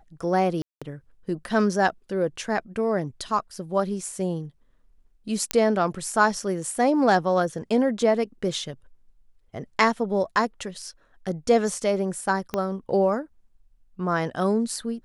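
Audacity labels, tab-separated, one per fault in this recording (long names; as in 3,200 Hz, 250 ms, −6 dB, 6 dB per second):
0.620000	0.820000	drop-out 196 ms
5.510000	5.510000	click −5 dBFS
12.540000	12.540000	click −13 dBFS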